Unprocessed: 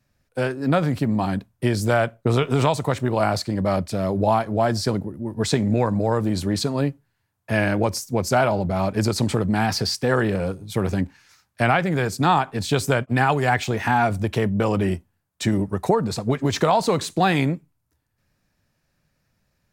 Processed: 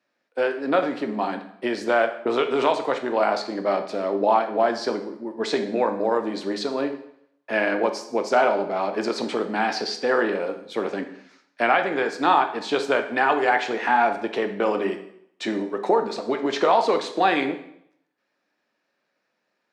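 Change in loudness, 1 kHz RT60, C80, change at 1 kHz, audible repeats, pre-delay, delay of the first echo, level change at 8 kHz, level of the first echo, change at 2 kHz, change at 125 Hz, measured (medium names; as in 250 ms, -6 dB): -1.5 dB, 0.70 s, 13.5 dB, +1.0 dB, no echo, 6 ms, no echo, -10.5 dB, no echo, +1.0 dB, -22.0 dB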